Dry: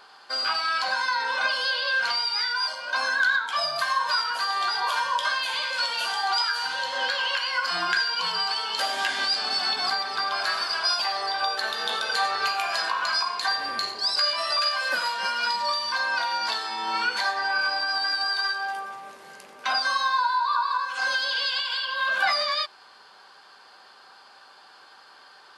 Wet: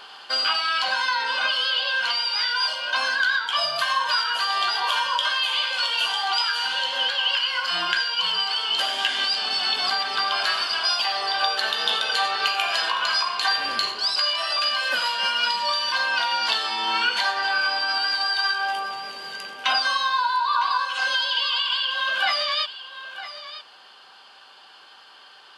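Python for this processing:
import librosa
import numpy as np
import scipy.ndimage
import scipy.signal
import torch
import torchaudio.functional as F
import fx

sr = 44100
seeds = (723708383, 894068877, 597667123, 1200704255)

y = fx.peak_eq(x, sr, hz=3000.0, db=12.5, octaves=0.41)
y = fx.rider(y, sr, range_db=10, speed_s=0.5)
y = y + 10.0 ** (-13.5 / 20.0) * np.pad(y, (int(957 * sr / 1000.0), 0))[:len(y)]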